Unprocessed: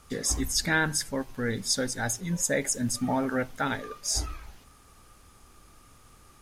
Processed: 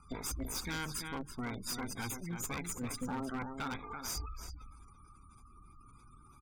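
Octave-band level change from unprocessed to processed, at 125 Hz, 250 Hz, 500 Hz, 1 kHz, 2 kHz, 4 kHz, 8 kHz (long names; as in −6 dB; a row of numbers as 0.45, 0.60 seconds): −9.5, −10.0, −14.5, −8.5, −13.5, −11.5, −13.0 decibels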